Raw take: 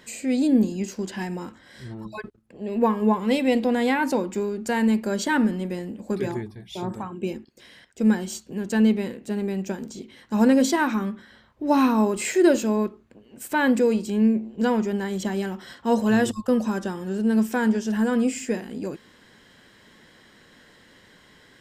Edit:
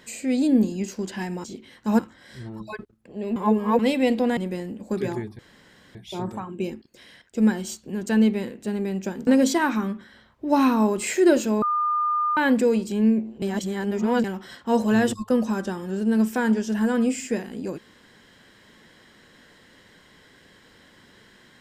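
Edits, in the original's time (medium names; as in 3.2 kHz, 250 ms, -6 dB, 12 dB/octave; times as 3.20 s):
2.81–3.24 s: reverse
3.82–5.56 s: delete
6.58 s: insert room tone 0.56 s
9.90–10.45 s: move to 1.44 s
12.80–13.55 s: bleep 1.21 kHz -20 dBFS
14.60–15.42 s: reverse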